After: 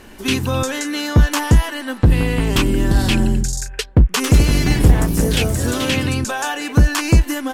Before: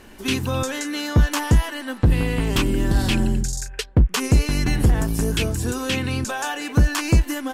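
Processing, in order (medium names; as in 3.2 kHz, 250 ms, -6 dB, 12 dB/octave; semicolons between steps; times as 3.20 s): 4.14–6.28 s: ever faster or slower copies 99 ms, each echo +2 st, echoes 3, each echo -6 dB; trim +4 dB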